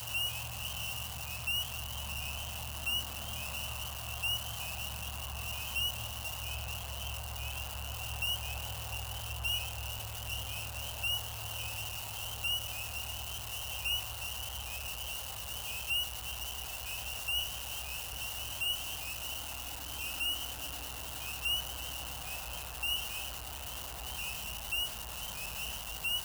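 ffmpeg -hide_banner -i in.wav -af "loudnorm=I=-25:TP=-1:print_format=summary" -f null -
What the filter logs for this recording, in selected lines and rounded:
Input Integrated:    -36.1 LUFS
Input True Peak:     -23.5 dBTP
Input LRA:             1.3 LU
Input Threshold:     -46.1 LUFS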